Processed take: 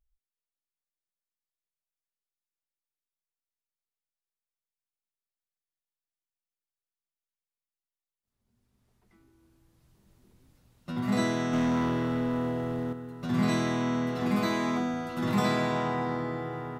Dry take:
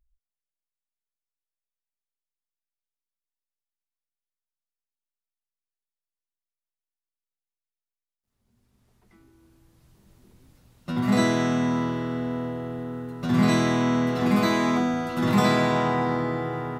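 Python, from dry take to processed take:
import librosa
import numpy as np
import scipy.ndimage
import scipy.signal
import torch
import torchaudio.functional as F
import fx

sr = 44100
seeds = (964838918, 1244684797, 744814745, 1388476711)

y = fx.leveller(x, sr, passes=2, at=(11.53, 12.93))
y = y * librosa.db_to_amplitude(-6.0)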